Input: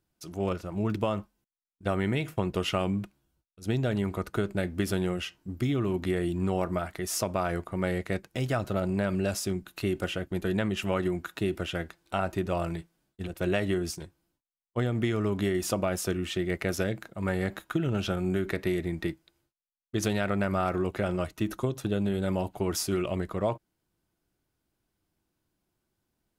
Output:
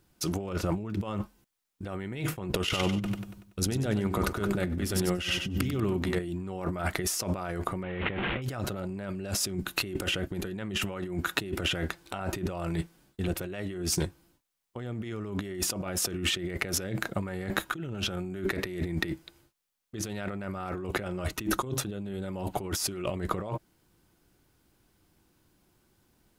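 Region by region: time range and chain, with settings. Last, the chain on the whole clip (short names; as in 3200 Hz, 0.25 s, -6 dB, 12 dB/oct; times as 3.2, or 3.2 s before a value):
2.54–6.2 negative-ratio compressor -34 dBFS, ratio -0.5 + feedback echo 95 ms, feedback 47%, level -12.5 dB
7.83–8.42 delta modulation 16 kbps, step -38 dBFS + high shelf 2500 Hz +10.5 dB
whole clip: notch 650 Hz, Q 15; negative-ratio compressor -38 dBFS, ratio -1; gain +5.5 dB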